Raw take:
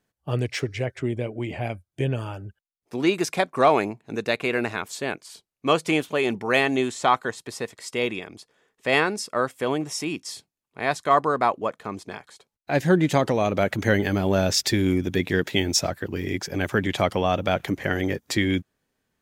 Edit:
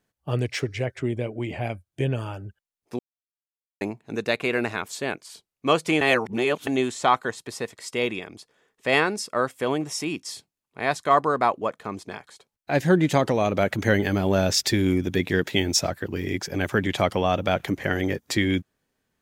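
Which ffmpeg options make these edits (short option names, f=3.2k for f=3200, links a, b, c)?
-filter_complex "[0:a]asplit=5[a][b][c][d][e];[a]atrim=end=2.99,asetpts=PTS-STARTPTS,afade=t=out:st=2.986:d=0.004:c=hsin[f];[b]atrim=start=2.99:end=3.81,asetpts=PTS-STARTPTS,volume=0[g];[c]atrim=start=3.81:end=6.012,asetpts=PTS-STARTPTS,afade=t=in:d=0.004:c=hsin[h];[d]atrim=start=6.008:end=6.672,asetpts=PTS-STARTPTS,areverse[i];[e]atrim=start=6.668[j];[f][g][h]concat=n=3:v=0:a=1[k];[k][i]acrossfade=d=0.004:c1=hsin:c2=hsin[l];[l][j]acrossfade=d=0.004:c1=hsin:c2=hsin"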